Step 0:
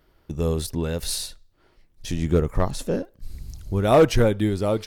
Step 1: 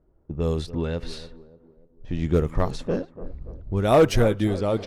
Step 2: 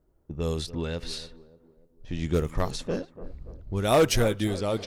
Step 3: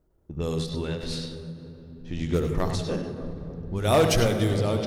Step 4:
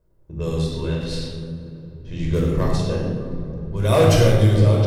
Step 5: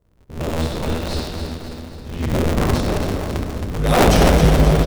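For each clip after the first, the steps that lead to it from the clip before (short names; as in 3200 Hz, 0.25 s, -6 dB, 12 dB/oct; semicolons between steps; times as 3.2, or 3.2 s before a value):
tape echo 0.29 s, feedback 52%, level -14 dB, low-pass 2400 Hz; low-pass opened by the level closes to 580 Hz, open at -16.5 dBFS; gain -1 dB
high shelf 2600 Hz +11.5 dB; gain -4.5 dB
on a send at -5 dB: reverb RT60 3.5 s, pre-delay 68 ms; on the sum: ending taper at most 110 dB/s
shoebox room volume 2000 m³, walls furnished, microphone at 5.2 m; gain -2 dB
cycle switcher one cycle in 2, inverted; feedback echo 0.268 s, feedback 53%, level -7.5 dB; gain +1 dB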